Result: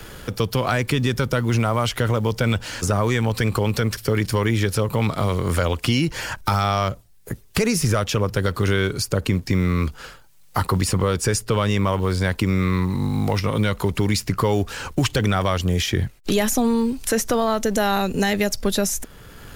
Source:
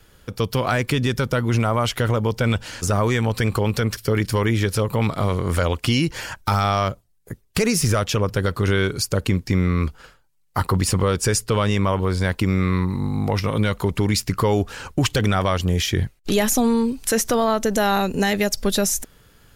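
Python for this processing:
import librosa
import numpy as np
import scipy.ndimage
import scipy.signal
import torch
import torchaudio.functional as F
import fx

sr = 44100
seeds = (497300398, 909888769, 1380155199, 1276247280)

y = fx.law_mismatch(x, sr, coded='mu')
y = fx.band_squash(y, sr, depth_pct=40)
y = y * 10.0 ** (-1.0 / 20.0)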